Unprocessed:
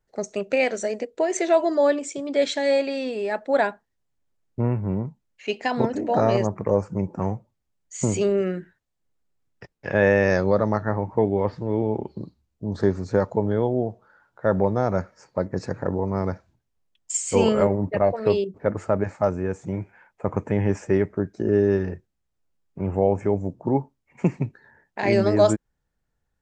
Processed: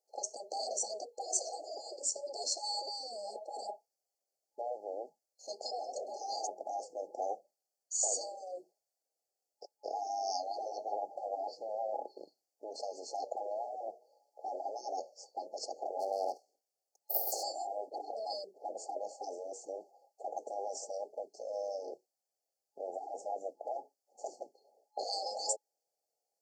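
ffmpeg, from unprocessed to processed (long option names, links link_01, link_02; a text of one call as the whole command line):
ffmpeg -i in.wav -filter_complex "[0:a]asplit=3[link_01][link_02][link_03];[link_01]afade=type=out:start_time=15.99:duration=0.02[link_04];[link_02]aeval=exprs='abs(val(0))':channel_layout=same,afade=type=in:start_time=15.99:duration=0.02,afade=type=out:start_time=17.42:duration=0.02[link_05];[link_03]afade=type=in:start_time=17.42:duration=0.02[link_06];[link_04][link_05][link_06]amix=inputs=3:normalize=0,afftfilt=real='re*lt(hypot(re,im),0.178)':imag='im*lt(hypot(re,im),0.178)':win_size=1024:overlap=0.75,highpass=frequency=540:width=0.5412,highpass=frequency=540:width=1.3066,afftfilt=real='re*(1-between(b*sr/4096,840,4200))':imag='im*(1-between(b*sr/4096,840,4200))':win_size=4096:overlap=0.75,volume=2dB" out.wav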